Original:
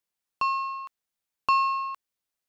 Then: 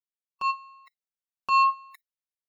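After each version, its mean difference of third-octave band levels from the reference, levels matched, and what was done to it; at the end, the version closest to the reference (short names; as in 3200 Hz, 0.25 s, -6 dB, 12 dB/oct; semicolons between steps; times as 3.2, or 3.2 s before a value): 3.0 dB: spectral noise reduction 29 dB; comb 5.3 ms, depth 91%; transient shaper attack -10 dB, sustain +9 dB; gain +2 dB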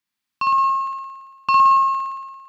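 4.5 dB: graphic EQ 125/250/500/1000/2000/4000 Hz +4/+10/-11/+5/+6/+5 dB; flutter echo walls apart 9.7 m, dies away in 1.4 s; dynamic EQ 140 Hz, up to +8 dB, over -52 dBFS, Q 2.6; gain -1.5 dB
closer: first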